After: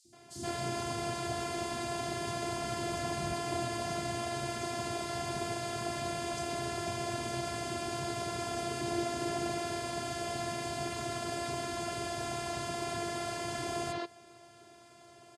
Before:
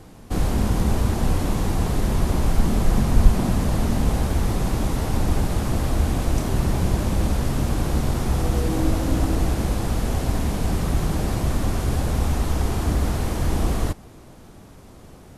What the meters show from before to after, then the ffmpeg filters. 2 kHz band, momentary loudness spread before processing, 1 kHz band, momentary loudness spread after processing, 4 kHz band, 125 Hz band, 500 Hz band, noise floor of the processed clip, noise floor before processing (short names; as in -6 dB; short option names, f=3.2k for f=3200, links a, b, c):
-4.5 dB, 3 LU, -5.0 dB, 2 LU, -3.5 dB, -20.5 dB, -6.0 dB, -57 dBFS, -45 dBFS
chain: -filter_complex "[0:a]afftfilt=real='hypot(re,im)*cos(PI*b)':imag='0':win_size=512:overlap=0.75,highpass=f=120:w=0.5412,highpass=f=120:w=1.3066,equalizer=f=130:t=q:w=4:g=6,equalizer=f=300:t=q:w=4:g=-6,equalizer=f=460:t=q:w=4:g=3,equalizer=f=1.1k:t=q:w=4:g=-5,equalizer=f=4.5k:t=q:w=4:g=5,lowpass=f=9.1k:w=0.5412,lowpass=f=9.1k:w=1.3066,acrossover=split=290|4800[a][b][c];[a]adelay=50[d];[b]adelay=130[e];[d][e][c]amix=inputs=3:normalize=0"